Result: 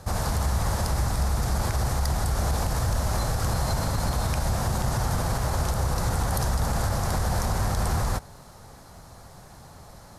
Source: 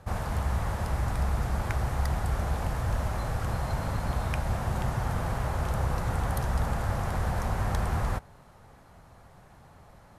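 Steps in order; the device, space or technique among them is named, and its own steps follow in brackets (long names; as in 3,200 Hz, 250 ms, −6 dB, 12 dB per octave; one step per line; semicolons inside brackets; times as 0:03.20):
over-bright horn tweeter (high shelf with overshoot 3,600 Hz +7.5 dB, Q 1.5; brickwall limiter −23 dBFS, peak gain reduction 10 dB)
level +6.5 dB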